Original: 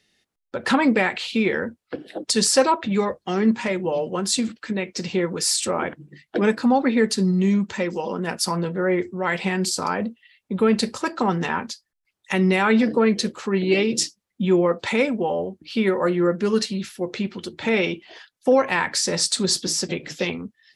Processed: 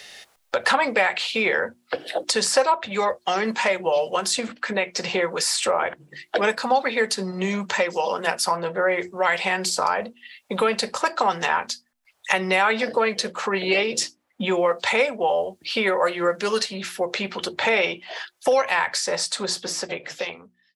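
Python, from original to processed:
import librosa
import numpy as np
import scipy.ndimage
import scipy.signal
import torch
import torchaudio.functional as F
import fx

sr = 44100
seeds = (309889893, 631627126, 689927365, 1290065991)

y = fx.fade_out_tail(x, sr, length_s=2.63)
y = fx.low_shelf_res(y, sr, hz=420.0, db=-12.0, q=1.5)
y = fx.hum_notches(y, sr, base_hz=60, count=6)
y = fx.band_squash(y, sr, depth_pct=70)
y = F.gain(torch.from_numpy(y), 2.5).numpy()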